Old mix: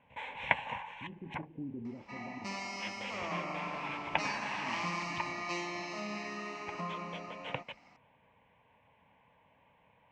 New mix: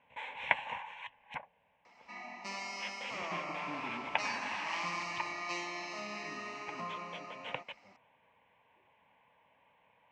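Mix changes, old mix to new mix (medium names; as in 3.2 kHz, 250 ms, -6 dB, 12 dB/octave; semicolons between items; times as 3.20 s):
speech: entry +2.10 s; master: add bass shelf 290 Hz -11.5 dB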